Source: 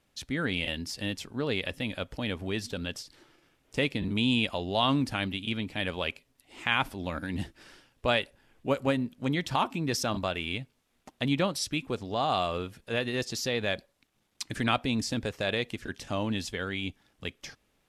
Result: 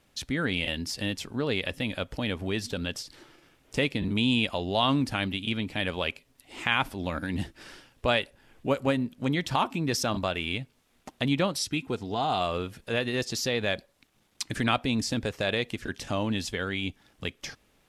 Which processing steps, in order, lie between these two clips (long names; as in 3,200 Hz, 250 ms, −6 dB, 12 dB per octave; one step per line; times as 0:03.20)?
in parallel at 0 dB: downward compressor, threshold −40 dBFS, peak gain reduction 18 dB
0:11.62–0:12.41: on the sum: notch comb filter 570 Hz